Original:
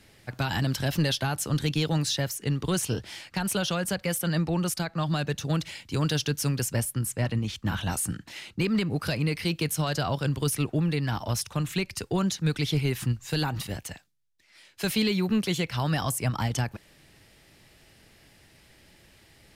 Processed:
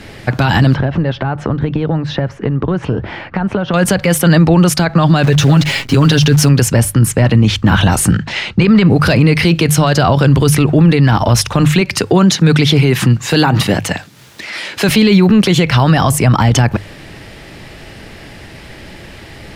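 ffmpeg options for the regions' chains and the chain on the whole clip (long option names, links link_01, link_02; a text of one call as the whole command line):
ffmpeg -i in.wav -filter_complex "[0:a]asettb=1/sr,asplit=3[link_01][link_02][link_03];[link_01]atrim=end=0.744[link_04];[link_02]atrim=start=0.74:end=3.74,asetpts=PTS-STARTPTS,afade=type=in:duration=0.004:curve=qsin,afade=type=out:start_time=2.996:duration=0.004:curve=qsin,lowpass=1500,acompressor=threshold=-36dB:ratio=8:attack=3.2:release=140:knee=1:detection=peak[link_05];[link_03]atrim=start=3.736[link_06];[link_04][link_05]acrossfade=duration=0.004:curve1=hsin:curve2=qsin[link_07];[link_07][link_06]acrossfade=duration=0.004:curve1=qsin:curve2=hsin,asettb=1/sr,asplit=3[link_08][link_09][link_10];[link_08]atrim=end=5.234[link_11];[link_09]atrim=start=5.23:end=6.49,asetpts=PTS-STARTPTS,afade=type=in:duration=0.004:curve=qsin,afade=type=out:start_time=1.256:duration=0.004:curve=qsin,aecho=1:1:7.3:0.83,atrim=end_sample=55566,acrusher=bits=8:dc=4:mix=0:aa=0.000001[link_12];[link_10]atrim=start=6.486[link_13];[link_11][link_12]acrossfade=duration=0.004:curve1=hsin:curve2=qsin[link_14];[link_14][link_13]acrossfade=duration=0.004:curve1=qsin:curve2=hsin,asettb=1/sr,asplit=3[link_15][link_16][link_17];[link_15]atrim=end=8.114[link_18];[link_16]atrim=start=8.11:end=8.87,asetpts=PTS-STARTPTS,afade=type=in:duration=0.004:curve=qsin,afade=type=out:start_time=0.756:duration=0.004:curve=qsin,lowpass=6300,equalizer=frequency=300:width_type=o:width=0.31:gain=-11.5[link_19];[link_17]atrim=start=8.866[link_20];[link_18][link_19]acrossfade=duration=0.004:curve1=hsin:curve2=qsin[link_21];[link_21][link_20]acrossfade=duration=0.004:curve1=qsin:curve2=hsin,asettb=1/sr,asplit=3[link_22][link_23][link_24];[link_22]atrim=end=11.814[link_25];[link_23]atrim=start=11.81:end=14.89,asetpts=PTS-STARTPTS,afade=type=in:duration=0.004:curve=qsin,afade=type=out:start_time=3.076:duration=0.004:curve=qsin,highpass=130,acompressor=mode=upward:threshold=-34dB:ratio=2.5:attack=3.2:release=140:knee=2.83:detection=peak[link_26];[link_24]atrim=start=14.886[link_27];[link_25][link_26]acrossfade=duration=0.004:curve1=hsin:curve2=qsin[link_28];[link_28][link_27]acrossfade=duration=0.004:curve1=qsin:curve2=hsin,lowpass=frequency=2400:poles=1,bandreject=frequency=50:width_type=h:width=6,bandreject=frequency=100:width_type=h:width=6,bandreject=frequency=150:width_type=h:width=6,alimiter=level_in=26dB:limit=-1dB:release=50:level=0:latency=1,volume=-1dB" out.wav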